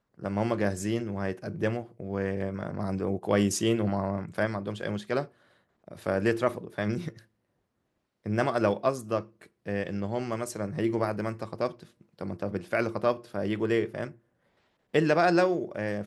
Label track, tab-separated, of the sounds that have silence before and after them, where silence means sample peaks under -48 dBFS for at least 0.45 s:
5.840000	7.210000	sound
8.260000	14.150000	sound